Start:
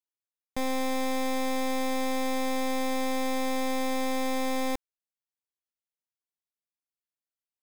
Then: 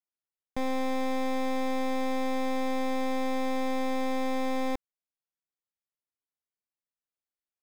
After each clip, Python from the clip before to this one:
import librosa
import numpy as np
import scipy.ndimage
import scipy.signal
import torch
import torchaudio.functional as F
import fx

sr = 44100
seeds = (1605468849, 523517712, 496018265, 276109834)

y = fx.high_shelf(x, sr, hz=2600.0, db=-9.5)
y = fx.leveller(y, sr, passes=1)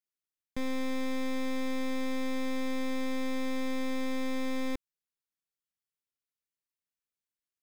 y = fx.peak_eq(x, sr, hz=740.0, db=-14.0, octaves=0.71)
y = F.gain(torch.from_numpy(y), -1.0).numpy()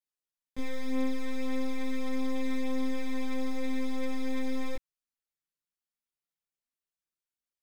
y = fx.chorus_voices(x, sr, voices=6, hz=0.33, base_ms=19, depth_ms=4.2, mix_pct=60)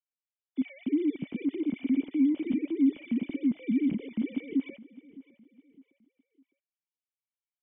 y = fx.sine_speech(x, sr)
y = fx.formant_cascade(y, sr, vowel='i')
y = fx.echo_feedback(y, sr, ms=609, feedback_pct=38, wet_db=-20)
y = F.gain(torch.from_numpy(y), 1.5).numpy()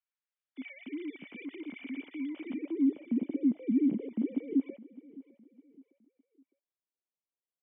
y = fx.filter_sweep_bandpass(x, sr, from_hz=1700.0, to_hz=440.0, start_s=2.3, end_s=3.01, q=1.0)
y = F.gain(torch.from_numpy(y), 3.0).numpy()